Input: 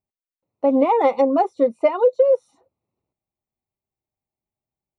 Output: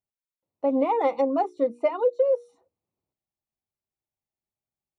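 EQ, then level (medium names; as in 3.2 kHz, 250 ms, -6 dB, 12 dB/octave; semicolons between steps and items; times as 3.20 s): hum notches 60/120/180/240/300/360/420/480 Hz; -6.0 dB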